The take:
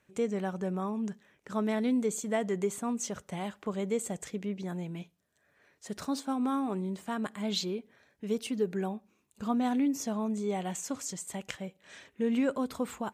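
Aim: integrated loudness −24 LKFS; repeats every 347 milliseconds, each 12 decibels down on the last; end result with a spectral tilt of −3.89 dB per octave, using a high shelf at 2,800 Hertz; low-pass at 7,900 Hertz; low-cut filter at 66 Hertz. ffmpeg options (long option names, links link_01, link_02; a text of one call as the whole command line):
ffmpeg -i in.wav -af "highpass=66,lowpass=7900,highshelf=frequency=2800:gain=8,aecho=1:1:347|694|1041:0.251|0.0628|0.0157,volume=8.5dB" out.wav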